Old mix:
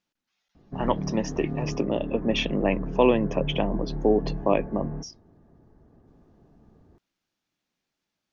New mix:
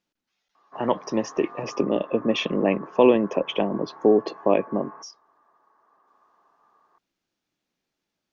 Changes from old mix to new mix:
background: add resonant high-pass 1100 Hz, resonance Q 6.5; master: add bell 400 Hz +4 dB 1.4 oct

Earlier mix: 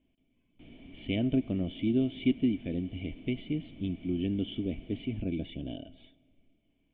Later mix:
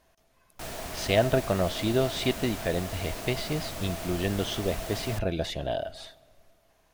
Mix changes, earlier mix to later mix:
speech -6.5 dB; master: remove vocal tract filter i

